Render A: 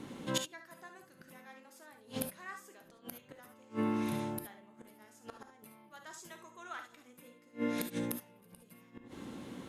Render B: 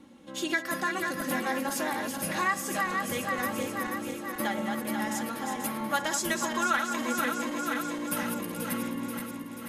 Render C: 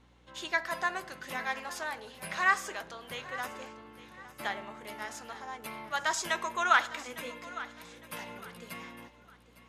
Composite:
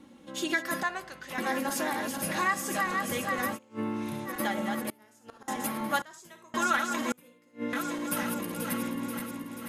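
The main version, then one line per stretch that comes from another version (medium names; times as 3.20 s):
B
0.83–1.38 s: from C
3.56–4.27 s: from A, crossfade 0.06 s
4.90–5.48 s: from A
6.02–6.54 s: from A
7.12–7.73 s: from A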